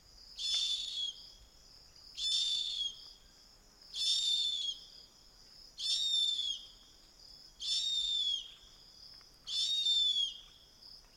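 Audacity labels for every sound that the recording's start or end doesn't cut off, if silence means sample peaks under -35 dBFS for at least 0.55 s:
2.190000	2.880000	sound
3.960000	4.720000	sound
5.800000	6.550000	sound
7.620000	8.400000	sound
9.490000	10.290000	sound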